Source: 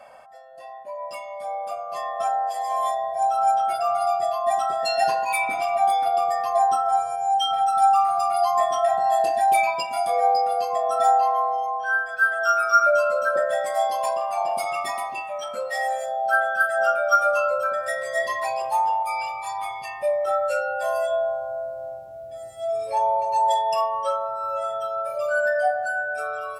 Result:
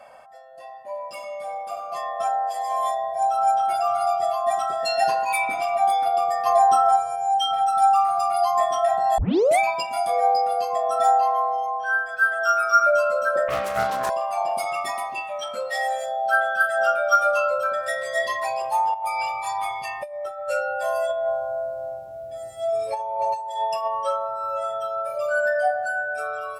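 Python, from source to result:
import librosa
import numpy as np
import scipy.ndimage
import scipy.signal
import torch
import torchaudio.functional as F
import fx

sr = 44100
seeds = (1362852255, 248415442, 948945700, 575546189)

y = fx.reverb_throw(x, sr, start_s=0.67, length_s=1.19, rt60_s=1.0, drr_db=2.5)
y = fx.echo_throw(y, sr, start_s=3.29, length_s=0.43, ms=300, feedback_pct=75, wet_db=-11.5)
y = fx.env_flatten(y, sr, amount_pct=50, at=(6.45, 6.95), fade=0.02)
y = fx.doppler_dist(y, sr, depth_ms=0.36, at=(13.48, 14.1))
y = fx.peak_eq(y, sr, hz=3600.0, db=5.5, octaves=0.77, at=(15.16, 18.37))
y = fx.over_compress(y, sr, threshold_db=-27.0, ratio=-0.5, at=(18.94, 20.49))
y = fx.over_compress(y, sr, threshold_db=-24.0, ratio=-0.5, at=(21.09, 23.88))
y = fx.edit(y, sr, fx.tape_start(start_s=9.18, length_s=0.41), tone=tone)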